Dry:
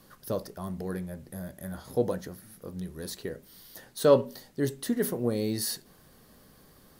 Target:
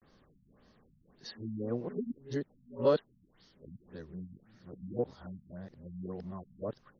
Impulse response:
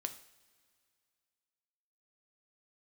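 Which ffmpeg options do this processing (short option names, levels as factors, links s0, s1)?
-af "areverse,afftfilt=real='re*lt(b*sr/1024,240*pow(6700/240,0.5+0.5*sin(2*PI*1.8*pts/sr)))':imag='im*lt(b*sr/1024,240*pow(6700/240,0.5+0.5*sin(2*PI*1.8*pts/sr)))':win_size=1024:overlap=0.75,volume=0.473"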